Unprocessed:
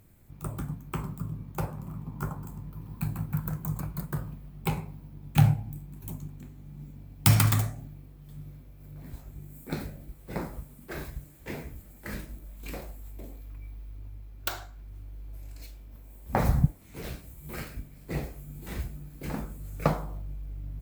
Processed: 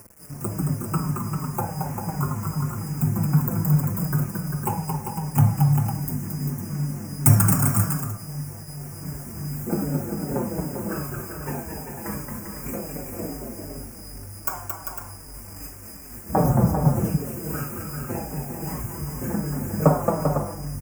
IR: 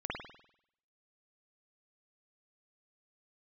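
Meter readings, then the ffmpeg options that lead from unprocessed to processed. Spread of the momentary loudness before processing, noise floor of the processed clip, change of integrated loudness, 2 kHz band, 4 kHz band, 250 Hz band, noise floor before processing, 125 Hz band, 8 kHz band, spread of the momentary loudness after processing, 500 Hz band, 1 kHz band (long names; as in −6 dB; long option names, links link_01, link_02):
20 LU, −40 dBFS, +7.0 dB, +2.5 dB, −0.5 dB, +10.0 dB, −51 dBFS, +7.0 dB, +10.0 dB, 15 LU, +10.5 dB, +8.5 dB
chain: -filter_complex "[0:a]highpass=150,equalizer=frequency=2000:width=3.2:gain=-14,asplit=2[link_01][link_02];[link_02]acompressor=threshold=-40dB:ratio=6,volume=2.5dB[link_03];[link_01][link_03]amix=inputs=2:normalize=0,aeval=exprs='val(0)+0.00398*sin(2*PI*5000*n/s)':channel_layout=same,aphaser=in_gain=1:out_gain=1:delay=1.3:decay=0.47:speed=0.3:type=triangular,acrusher=bits=6:mix=0:aa=0.000001,asuperstop=centerf=3800:order=4:qfactor=0.82,aecho=1:1:223|395|503:0.562|0.473|0.355,asplit=2[link_04][link_05];[1:a]atrim=start_sample=2205[link_06];[link_05][link_06]afir=irnorm=-1:irlink=0,volume=-15.5dB[link_07];[link_04][link_07]amix=inputs=2:normalize=0,asplit=2[link_08][link_09];[link_09]adelay=5.2,afreqshift=-2.6[link_10];[link_08][link_10]amix=inputs=2:normalize=1,volume=5.5dB"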